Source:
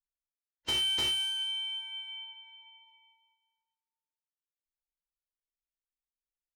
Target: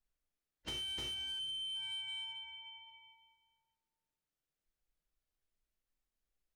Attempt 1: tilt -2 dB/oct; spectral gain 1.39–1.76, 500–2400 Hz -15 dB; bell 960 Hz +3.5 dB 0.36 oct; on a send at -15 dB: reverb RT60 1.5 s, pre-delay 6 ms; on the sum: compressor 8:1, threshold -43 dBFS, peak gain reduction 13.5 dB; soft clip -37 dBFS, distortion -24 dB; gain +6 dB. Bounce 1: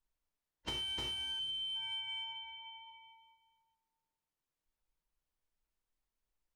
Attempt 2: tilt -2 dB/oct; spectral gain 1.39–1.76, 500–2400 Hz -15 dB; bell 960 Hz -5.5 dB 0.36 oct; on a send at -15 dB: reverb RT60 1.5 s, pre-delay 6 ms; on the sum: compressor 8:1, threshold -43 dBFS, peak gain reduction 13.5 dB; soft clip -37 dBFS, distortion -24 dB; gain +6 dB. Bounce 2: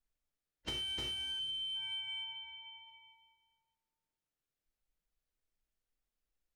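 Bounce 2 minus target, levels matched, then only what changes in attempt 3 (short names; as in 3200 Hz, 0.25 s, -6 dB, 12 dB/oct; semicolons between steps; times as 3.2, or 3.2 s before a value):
soft clip: distortion -8 dB
change: soft clip -43 dBFS, distortion -16 dB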